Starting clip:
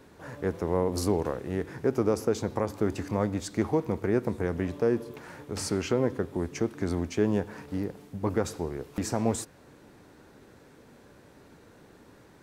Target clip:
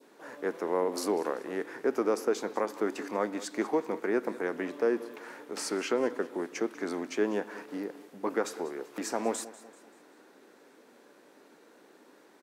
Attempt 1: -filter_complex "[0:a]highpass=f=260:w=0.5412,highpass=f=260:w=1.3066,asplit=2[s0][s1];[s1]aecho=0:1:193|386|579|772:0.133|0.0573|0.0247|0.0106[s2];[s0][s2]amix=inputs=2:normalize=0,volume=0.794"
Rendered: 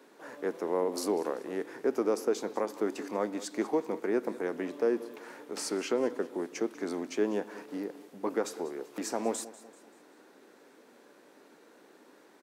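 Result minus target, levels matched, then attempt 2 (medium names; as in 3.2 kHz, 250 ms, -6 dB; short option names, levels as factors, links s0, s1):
2 kHz band -3.5 dB
-filter_complex "[0:a]highpass=f=260:w=0.5412,highpass=f=260:w=1.3066,adynamicequalizer=threshold=0.00562:dfrequency=1600:dqfactor=0.89:tfrequency=1600:tqfactor=0.89:attack=5:release=100:ratio=0.375:range=2.5:mode=boostabove:tftype=bell,asplit=2[s0][s1];[s1]aecho=0:1:193|386|579|772:0.133|0.0573|0.0247|0.0106[s2];[s0][s2]amix=inputs=2:normalize=0,volume=0.794"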